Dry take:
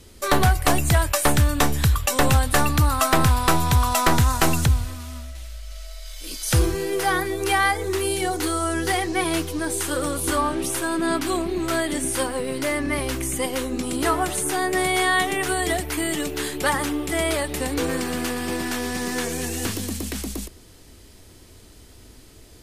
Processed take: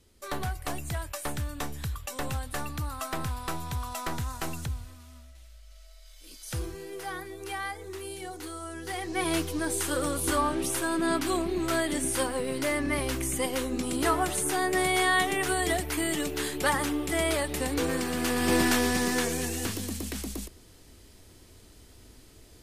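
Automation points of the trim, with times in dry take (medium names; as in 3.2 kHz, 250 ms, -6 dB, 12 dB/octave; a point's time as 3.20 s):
8.81 s -15 dB
9.30 s -4 dB
18.15 s -4 dB
18.58 s +4 dB
19.68 s -5.5 dB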